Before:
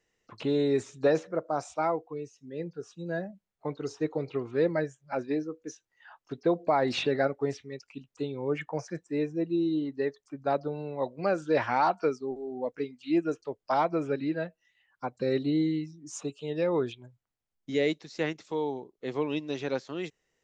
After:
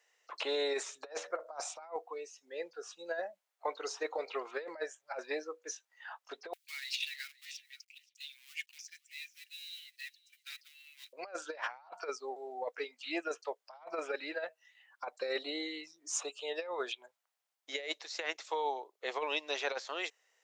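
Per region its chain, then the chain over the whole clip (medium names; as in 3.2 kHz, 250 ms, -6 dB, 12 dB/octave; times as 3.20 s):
6.53–11.13 s: companding laws mixed up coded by A + steep high-pass 2.3 kHz + delay 524 ms -23 dB
whole clip: high-pass 590 Hz 24 dB/octave; compressor with a negative ratio -37 dBFS, ratio -0.5; trim +1 dB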